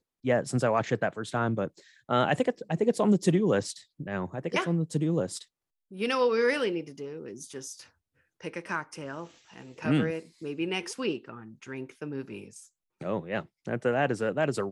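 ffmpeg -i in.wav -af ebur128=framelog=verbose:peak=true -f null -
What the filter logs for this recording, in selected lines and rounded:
Integrated loudness:
  I:         -29.3 LUFS
  Threshold: -40.2 LUFS
Loudness range:
  LRA:         8.0 LU
  Threshold: -50.6 LUFS
  LRA low:   -35.6 LUFS
  LRA high:  -27.6 LUFS
True peak:
  Peak:      -11.1 dBFS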